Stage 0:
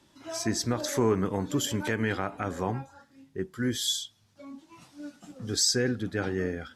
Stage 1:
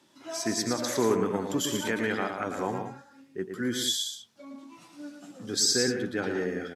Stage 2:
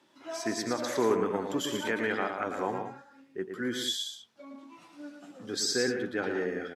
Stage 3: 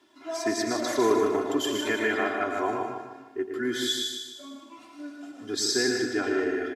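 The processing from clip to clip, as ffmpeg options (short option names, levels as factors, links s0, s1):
-filter_complex "[0:a]highpass=190,asplit=2[s0][s1];[s1]aecho=0:1:113.7|183.7:0.501|0.316[s2];[s0][s2]amix=inputs=2:normalize=0"
-af "bass=f=250:g=-7,treble=f=4000:g=-8"
-filter_complex "[0:a]aecho=1:1:2.9:0.98,asplit=2[s0][s1];[s1]aecho=0:1:152|304|456|608|760:0.501|0.21|0.0884|0.0371|0.0156[s2];[s0][s2]amix=inputs=2:normalize=0"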